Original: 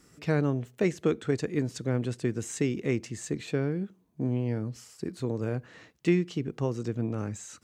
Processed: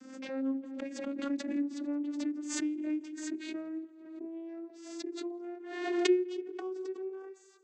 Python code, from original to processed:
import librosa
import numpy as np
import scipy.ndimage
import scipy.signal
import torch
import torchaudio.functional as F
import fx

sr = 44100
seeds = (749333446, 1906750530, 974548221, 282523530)

p1 = fx.vocoder_glide(x, sr, note=60, semitones=7)
p2 = p1 + fx.echo_feedback(p1, sr, ms=169, feedback_pct=52, wet_db=-19, dry=0)
p3 = fx.pre_swell(p2, sr, db_per_s=50.0)
y = p3 * 10.0 ** (-6.5 / 20.0)